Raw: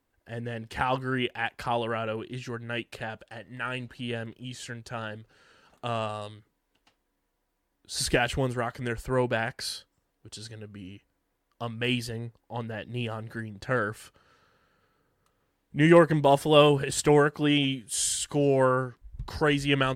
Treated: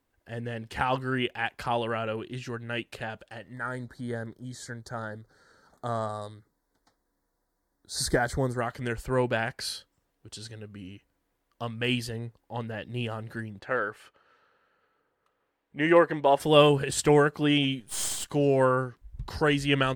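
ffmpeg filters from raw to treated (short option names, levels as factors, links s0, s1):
-filter_complex "[0:a]asettb=1/sr,asplit=3[s0][s1][s2];[s0]atrim=end=3.534[s3];[s1]atrim=start=3.53:end=8.61,asetpts=PTS-STARTPTS,afade=t=in:d=0.004:c=qsin,afade=t=out:st=5.076:d=0.004:c=qsin,asuperstop=centerf=2700:order=4:qfactor=1.4[s4];[s2]atrim=start=8.606[s5];[s3][s4]acrossfade=d=0.004:c1=hsin:c2=qsin[s6];[s6][s5]acrossfade=d=0.004:c1=qsin:c2=hsin,asettb=1/sr,asplit=3[s7][s8][s9];[s7]atrim=end=13.594[s10];[s8]atrim=start=13.59:end=16.4,asetpts=PTS-STARTPTS,afade=t=in:d=0.004:c=qsin,afade=t=out:st=2.806:d=0.004:c=qsin,bass=f=250:g=-14,treble=f=4000:g=-12[s11];[s9]atrim=start=16.396[s12];[s10][s11]acrossfade=d=0.004:c1=hsin:c2=qsin[s13];[s13][s12]acrossfade=d=0.004:c1=qsin:c2=hsin,asettb=1/sr,asplit=3[s14][s15][s16];[s14]atrim=end=17.804[s17];[s15]atrim=start=17.8:end=18.31,asetpts=PTS-STARTPTS,afade=t=in:d=0.004:c=qsin,afade=t=out:st=0.506:d=0.004:c=qsin,aeval=exprs='if(lt(val(0),0),0.251*val(0),val(0))':c=same[s18];[s16]atrim=start=18.306[s19];[s17][s18]acrossfade=d=0.004:c1=hsin:c2=qsin[s20];[s20][s19]acrossfade=d=0.004:c1=qsin:c2=hsin"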